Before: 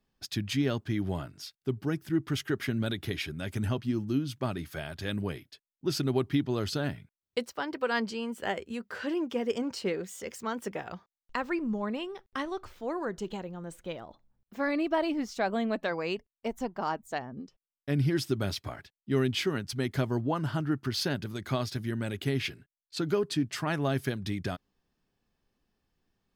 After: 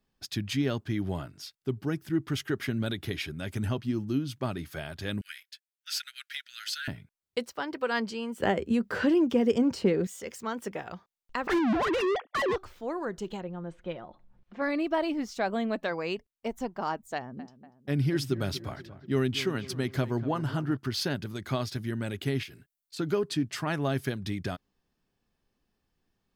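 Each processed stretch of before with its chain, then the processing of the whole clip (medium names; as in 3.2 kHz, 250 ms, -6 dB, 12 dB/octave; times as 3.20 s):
5.21–6.88 s: steep high-pass 1.4 kHz 96 dB/octave + waveshaping leveller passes 1
8.40–10.07 s: bass shelf 420 Hz +12 dB + three bands compressed up and down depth 70%
11.47–12.56 s: formants replaced by sine waves + overdrive pedal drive 38 dB, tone 2.1 kHz, clips at -19.5 dBFS
13.41–14.62 s: upward compressor, threshold -48 dBFS + low-pass 3 kHz + comb 5.6 ms, depth 36%
17.15–20.77 s: high-pass 44 Hz + filtered feedback delay 240 ms, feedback 55%, low-pass 1.8 kHz, level -14 dB
22.43–22.99 s: treble shelf 7.9 kHz +11 dB + compression 12:1, threshold -39 dBFS
whole clip: none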